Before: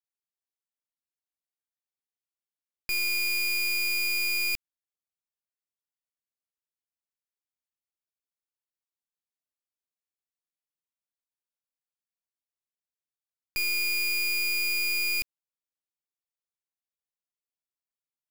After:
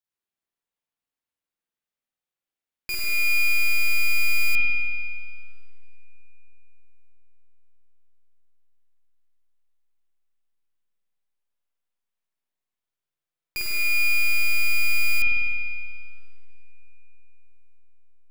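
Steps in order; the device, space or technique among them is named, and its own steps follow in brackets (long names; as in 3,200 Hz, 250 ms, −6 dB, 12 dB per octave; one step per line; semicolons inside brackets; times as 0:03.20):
dub delay into a spring reverb (feedback echo with a low-pass in the loop 321 ms, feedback 74%, low-pass 2,200 Hz, level −17.5 dB; spring reverb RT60 2 s, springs 49 ms, chirp 45 ms, DRR −5 dB)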